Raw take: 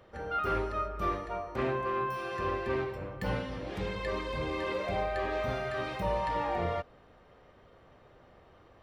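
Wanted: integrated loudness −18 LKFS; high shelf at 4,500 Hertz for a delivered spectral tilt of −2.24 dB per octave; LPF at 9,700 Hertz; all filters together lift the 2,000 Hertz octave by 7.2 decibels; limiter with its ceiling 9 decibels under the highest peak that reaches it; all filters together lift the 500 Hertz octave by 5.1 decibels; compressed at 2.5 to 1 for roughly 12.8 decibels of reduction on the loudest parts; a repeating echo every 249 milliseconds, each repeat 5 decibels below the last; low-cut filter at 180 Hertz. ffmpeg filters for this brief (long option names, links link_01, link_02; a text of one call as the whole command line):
ffmpeg -i in.wav -af "highpass=180,lowpass=9700,equalizer=frequency=500:width_type=o:gain=6,equalizer=frequency=2000:width_type=o:gain=8,highshelf=frequency=4500:gain=5.5,acompressor=threshold=-44dB:ratio=2.5,alimiter=level_in=13dB:limit=-24dB:level=0:latency=1,volume=-13dB,aecho=1:1:249|498|747|996|1245|1494|1743:0.562|0.315|0.176|0.0988|0.0553|0.031|0.0173,volume=26dB" out.wav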